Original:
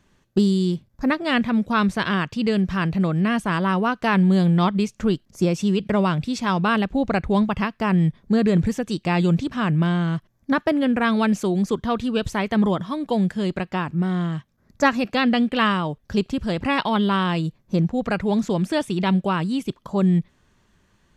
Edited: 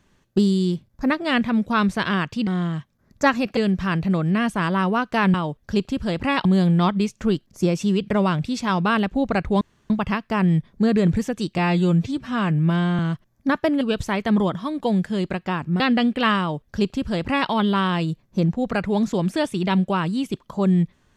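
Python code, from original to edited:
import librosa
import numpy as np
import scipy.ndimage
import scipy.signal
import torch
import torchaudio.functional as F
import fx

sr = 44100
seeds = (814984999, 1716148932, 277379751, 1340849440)

y = fx.edit(x, sr, fx.insert_room_tone(at_s=7.4, length_s=0.29),
    fx.stretch_span(start_s=9.08, length_s=0.94, factor=1.5),
    fx.cut(start_s=10.84, length_s=1.23),
    fx.move(start_s=14.06, length_s=1.1, to_s=2.47),
    fx.duplicate(start_s=15.75, length_s=1.11, to_s=4.24), tone=tone)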